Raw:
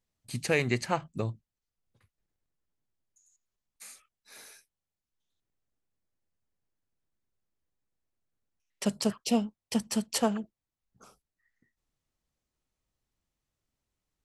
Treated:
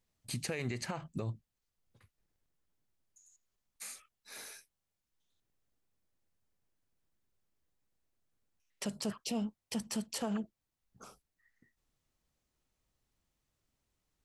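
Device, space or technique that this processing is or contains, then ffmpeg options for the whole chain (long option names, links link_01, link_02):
stacked limiters: -af "alimiter=limit=-19dB:level=0:latency=1:release=122,alimiter=level_in=1.5dB:limit=-24dB:level=0:latency=1:release=52,volume=-1.5dB,alimiter=level_in=6dB:limit=-24dB:level=0:latency=1:release=192,volume=-6dB,volume=2.5dB"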